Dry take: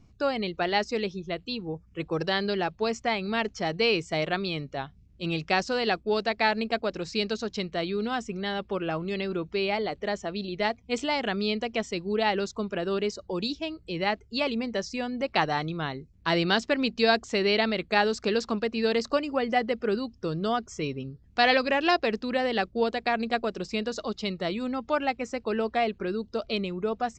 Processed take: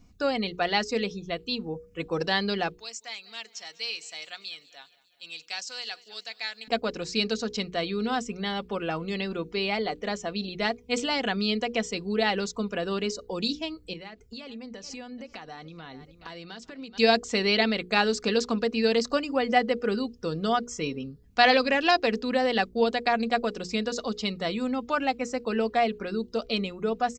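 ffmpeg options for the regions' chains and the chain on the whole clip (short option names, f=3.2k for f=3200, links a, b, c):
-filter_complex "[0:a]asettb=1/sr,asplit=3[a][b][c];[a]atrim=end=2.794[d];[b]atrim=start=2.79:end=6.68,asetpts=PTS-STARTPTS,afade=t=in:d=0.004:c=qsin,afade=t=out:st=3.886:d=0.004:c=qsin,aderivative,aecho=1:1:199|398|597|796|995:0.0891|0.0526|0.031|0.0183|0.0108,atrim=end_sample=171549[e];[c]atrim=start=6.676[f];[d][e]acrossfade=d=0.004:c1=hsin:c2=qsin[g];[g][f]acrossfade=d=0.004:c1=qsin:c2=hsin,asettb=1/sr,asplit=3[h][i][j];[h]atrim=end=13.934[k];[i]atrim=start=13.93:end=16.98,asetpts=PTS-STARTPTS,afade=t=in:d=0.004:c=qsin,afade=t=out:st=3.046:d=0.004:c=qsin,aecho=1:1:428|856:0.075|0.0232,atrim=end_sample=134505,acompressor=threshold=-38dB:ratio=16:attack=3.2:release=140:knee=1:detection=peak[l];[j]atrim=start=16.976[m];[k][l]acrossfade=d=0.004:c1=hsin:c2=qsin[n];[n][m]acrossfade=d=0.004:c1=qsin:c2=hsin,highshelf=f=6.8k:g=10,bandreject=f=60:t=h:w=6,bandreject=f=120:t=h:w=6,bandreject=f=180:t=h:w=6,bandreject=f=240:t=h:w=6,bandreject=f=300:t=h:w=6,bandreject=f=360:t=h:w=6,bandreject=f=420:t=h:w=6,bandreject=f=480:t=h:w=6,aecho=1:1:4.1:0.4"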